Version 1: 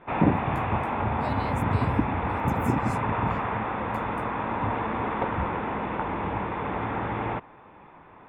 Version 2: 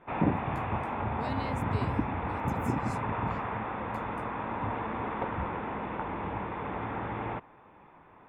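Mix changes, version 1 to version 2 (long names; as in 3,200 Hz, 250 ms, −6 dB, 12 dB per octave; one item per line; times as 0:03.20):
background −5.5 dB
master: add high-shelf EQ 9,300 Hz −10 dB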